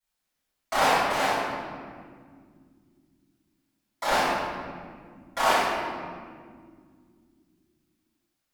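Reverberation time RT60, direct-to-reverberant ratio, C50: 2.2 s, -17.0 dB, -3.5 dB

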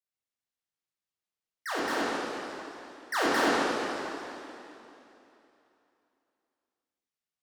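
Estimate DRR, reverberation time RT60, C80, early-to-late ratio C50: -8.0 dB, 3.0 s, -2.0 dB, -4.0 dB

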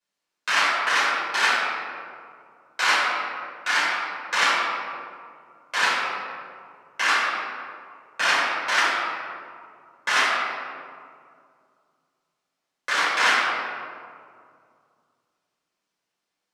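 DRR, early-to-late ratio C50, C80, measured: -10.5 dB, -2.0 dB, 0.0 dB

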